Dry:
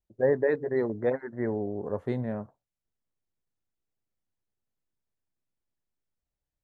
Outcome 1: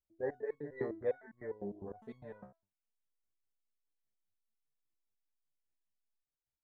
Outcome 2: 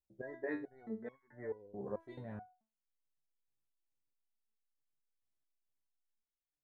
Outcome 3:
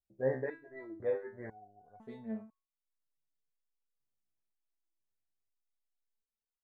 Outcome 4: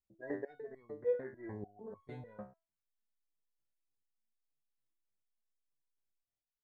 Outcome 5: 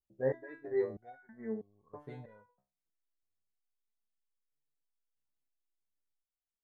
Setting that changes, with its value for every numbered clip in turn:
stepped resonator, rate: 9.9, 4.6, 2, 6.7, 3.1 Hz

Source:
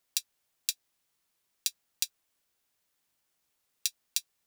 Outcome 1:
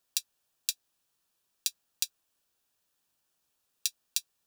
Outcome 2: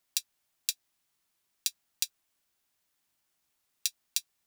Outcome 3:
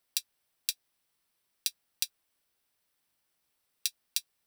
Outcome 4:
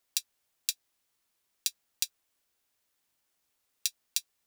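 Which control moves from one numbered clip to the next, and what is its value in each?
notch, frequency: 2100, 490, 6800, 160 Hz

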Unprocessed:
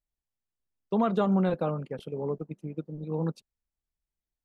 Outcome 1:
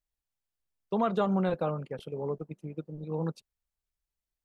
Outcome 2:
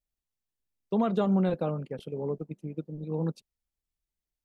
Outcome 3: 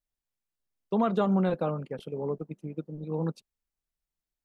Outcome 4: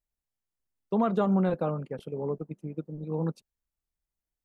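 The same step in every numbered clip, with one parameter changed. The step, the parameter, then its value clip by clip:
bell, frequency: 240, 1200, 66, 3600 Hz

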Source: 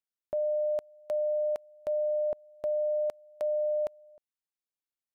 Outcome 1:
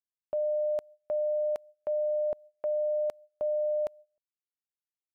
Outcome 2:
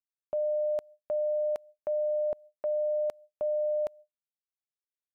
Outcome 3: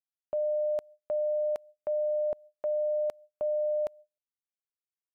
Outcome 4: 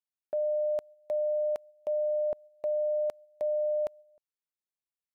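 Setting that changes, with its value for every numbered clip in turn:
gate, range: -25, -55, -40, -7 dB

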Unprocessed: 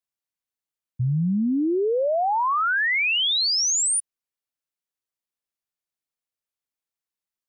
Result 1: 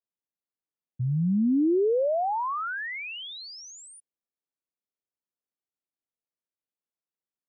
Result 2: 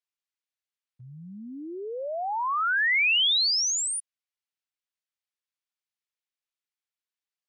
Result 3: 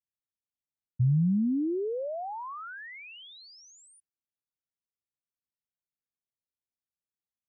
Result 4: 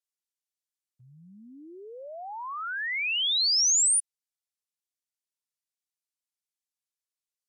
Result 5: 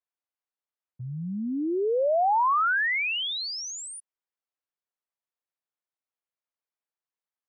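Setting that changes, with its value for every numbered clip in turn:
band-pass, frequency: 310, 2800, 100, 7300, 880 Hz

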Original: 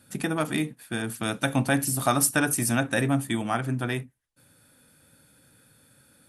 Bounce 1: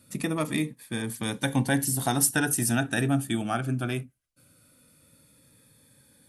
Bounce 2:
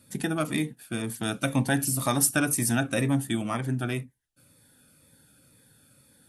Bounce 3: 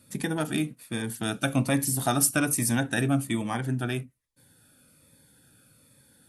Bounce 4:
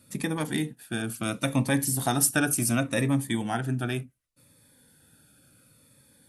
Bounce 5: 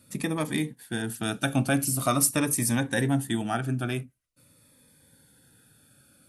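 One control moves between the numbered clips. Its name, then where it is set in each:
cascading phaser, rate: 0.2, 2, 1.2, 0.69, 0.45 Hz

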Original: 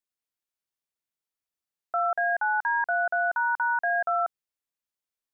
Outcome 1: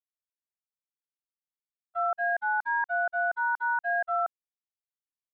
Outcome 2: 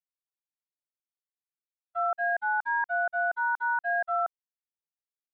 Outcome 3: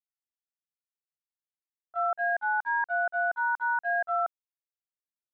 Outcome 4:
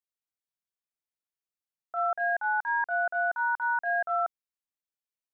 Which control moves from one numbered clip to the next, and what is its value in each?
gate, range: -45, -59, -21, -8 dB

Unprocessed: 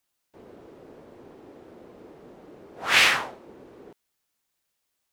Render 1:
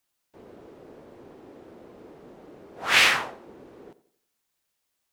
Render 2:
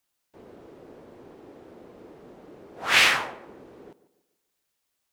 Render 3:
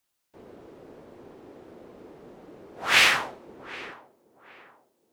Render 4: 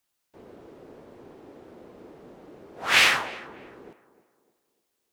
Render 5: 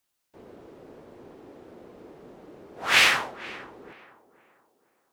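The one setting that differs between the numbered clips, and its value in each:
tape echo, time: 87, 143, 770, 301, 480 ms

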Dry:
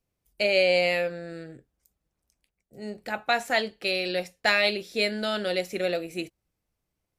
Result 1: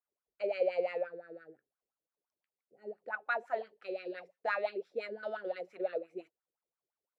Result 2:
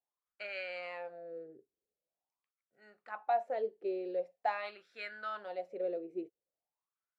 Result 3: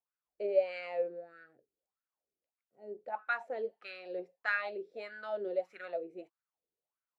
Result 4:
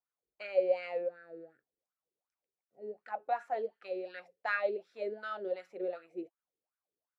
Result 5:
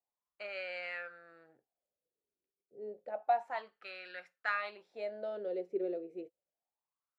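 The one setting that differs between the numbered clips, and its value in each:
wah, rate: 5.8, 0.45, 1.6, 2.7, 0.3 Hz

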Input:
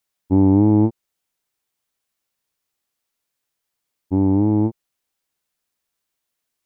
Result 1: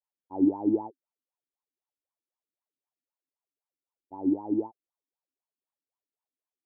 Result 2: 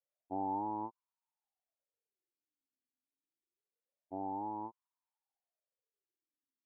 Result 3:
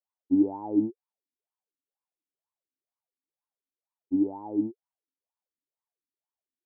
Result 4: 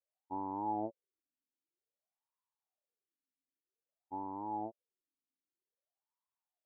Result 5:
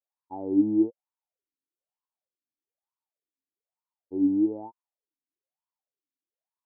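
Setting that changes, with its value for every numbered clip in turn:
wah, rate: 3.9, 0.26, 2.1, 0.52, 1.1 Hz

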